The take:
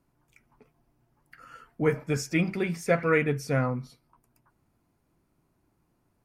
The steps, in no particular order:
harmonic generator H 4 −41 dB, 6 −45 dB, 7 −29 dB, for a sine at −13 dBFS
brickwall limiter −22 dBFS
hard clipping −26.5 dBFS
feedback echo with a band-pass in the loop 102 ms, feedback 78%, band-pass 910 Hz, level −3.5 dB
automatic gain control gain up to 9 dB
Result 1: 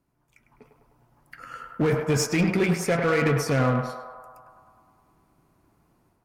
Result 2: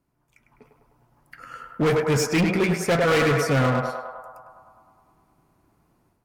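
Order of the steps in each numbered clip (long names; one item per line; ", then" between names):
brickwall limiter, then hard clipping, then automatic gain control, then feedback echo with a band-pass in the loop, then harmonic generator
feedback echo with a band-pass in the loop, then hard clipping, then brickwall limiter, then automatic gain control, then harmonic generator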